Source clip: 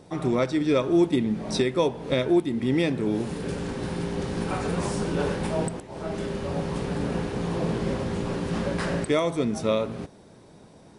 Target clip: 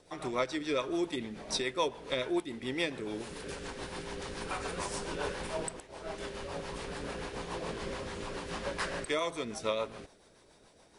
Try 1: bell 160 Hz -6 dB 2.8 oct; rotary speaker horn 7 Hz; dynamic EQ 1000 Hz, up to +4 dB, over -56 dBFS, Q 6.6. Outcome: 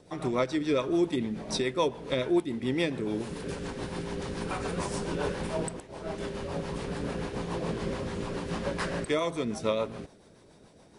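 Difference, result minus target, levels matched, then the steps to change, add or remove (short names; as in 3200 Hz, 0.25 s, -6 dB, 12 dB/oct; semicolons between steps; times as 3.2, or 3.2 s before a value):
125 Hz band +5.0 dB
change: bell 160 Hz -17 dB 2.8 oct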